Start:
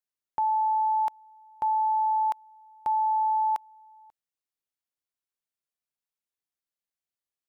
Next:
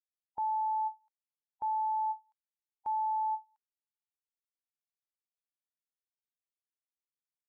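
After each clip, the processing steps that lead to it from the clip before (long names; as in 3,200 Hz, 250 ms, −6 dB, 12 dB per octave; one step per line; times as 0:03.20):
spectral dynamics exaggerated over time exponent 3
every ending faded ahead of time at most 330 dB per second
level −6.5 dB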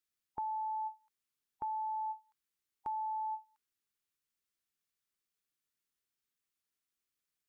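flat-topped bell 700 Hz −8 dB 1.1 octaves
downward compressor, threshold −42 dBFS, peak gain reduction 4.5 dB
level +6.5 dB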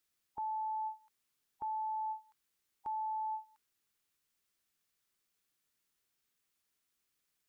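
brickwall limiter −40.5 dBFS, peak gain reduction 11 dB
level +6.5 dB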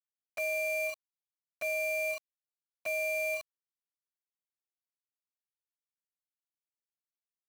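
bit reduction 8 bits
ring modulation 1,500 Hz
level +8 dB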